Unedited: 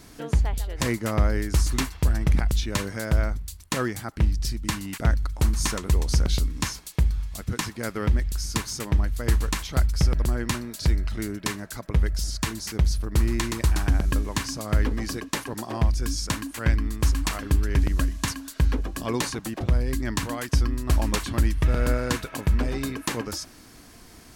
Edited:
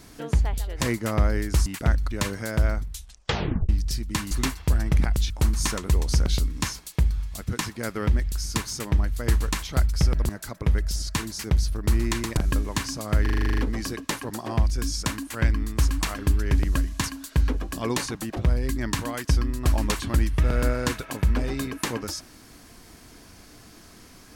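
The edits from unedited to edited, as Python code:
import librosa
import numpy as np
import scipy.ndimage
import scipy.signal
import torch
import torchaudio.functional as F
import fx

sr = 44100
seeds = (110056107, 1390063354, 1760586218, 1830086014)

y = fx.edit(x, sr, fx.swap(start_s=1.66, length_s=0.99, other_s=4.85, other_length_s=0.45),
    fx.tape_stop(start_s=3.4, length_s=0.83),
    fx.cut(start_s=10.29, length_s=1.28),
    fx.cut(start_s=13.65, length_s=0.32),
    fx.stutter(start_s=14.82, slice_s=0.04, count=10), tone=tone)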